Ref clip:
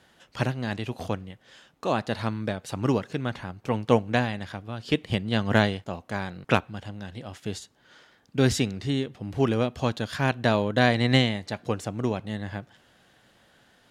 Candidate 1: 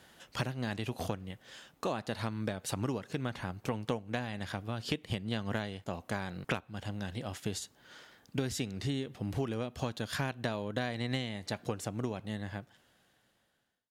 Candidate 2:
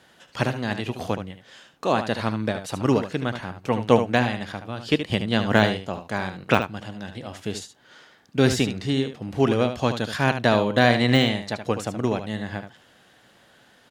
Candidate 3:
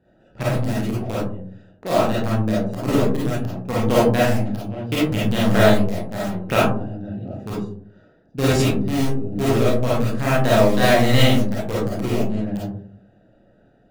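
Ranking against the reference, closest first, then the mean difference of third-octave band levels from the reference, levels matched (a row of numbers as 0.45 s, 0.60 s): 2, 1, 3; 3.0 dB, 5.5 dB, 9.5 dB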